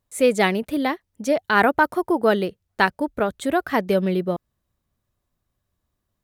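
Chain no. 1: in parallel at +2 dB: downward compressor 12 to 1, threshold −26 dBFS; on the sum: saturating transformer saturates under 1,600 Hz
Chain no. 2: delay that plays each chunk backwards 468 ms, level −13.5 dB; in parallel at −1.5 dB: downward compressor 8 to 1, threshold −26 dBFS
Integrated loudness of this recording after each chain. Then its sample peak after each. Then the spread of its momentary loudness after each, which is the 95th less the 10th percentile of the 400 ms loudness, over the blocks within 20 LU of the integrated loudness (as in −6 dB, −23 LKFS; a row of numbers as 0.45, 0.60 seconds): −21.5, −19.5 LKFS; −4.0, −1.5 dBFS; 6, 17 LU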